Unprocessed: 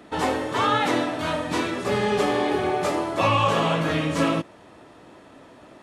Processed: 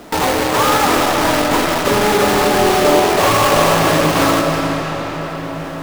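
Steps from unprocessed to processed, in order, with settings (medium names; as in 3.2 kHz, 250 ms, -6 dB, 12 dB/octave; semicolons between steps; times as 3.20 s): in parallel at -0.5 dB: compression, threshold -29 dBFS, peak gain reduction 12 dB; on the sum: low-pass 1.4 kHz 12 dB/octave; bass shelf 380 Hz -6 dB; sine folder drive 9 dB, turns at -9 dBFS; companded quantiser 2-bit; reverberation RT60 5.5 s, pre-delay 115 ms, DRR 1.5 dB; reverse; upward compressor, threshold -9 dBFS; reverse; trim -11 dB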